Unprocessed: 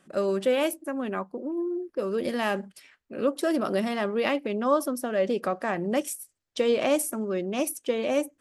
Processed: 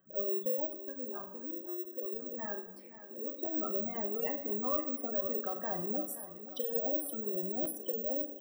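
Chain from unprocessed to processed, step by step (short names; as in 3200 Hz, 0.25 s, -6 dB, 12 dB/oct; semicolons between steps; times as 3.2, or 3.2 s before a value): de-hum 47.02 Hz, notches 12; spectral gate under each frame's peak -10 dB strong; compressor 2:1, threshold -29 dBFS, peak gain reduction 6 dB; 0.65–3.39 flange 1 Hz, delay 1.4 ms, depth 7 ms, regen -35%; doubler 39 ms -10.5 dB; feedback echo 0.524 s, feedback 55%, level -13.5 dB; reverb RT60 0.85 s, pre-delay 4 ms, DRR 6.5 dB; careless resampling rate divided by 2×, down none, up zero stuff; stuck buffer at 3.44/7.62, samples 512, times 2; gain -8.5 dB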